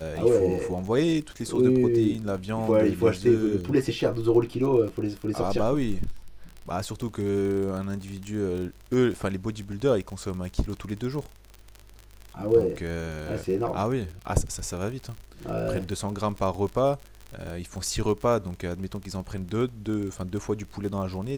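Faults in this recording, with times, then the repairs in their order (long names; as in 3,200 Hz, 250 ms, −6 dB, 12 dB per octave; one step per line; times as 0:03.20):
surface crackle 39 per second −32 dBFS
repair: click removal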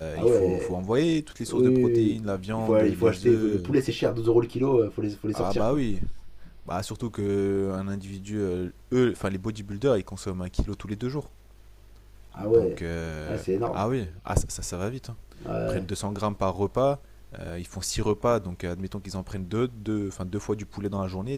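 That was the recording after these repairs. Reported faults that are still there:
none of them is left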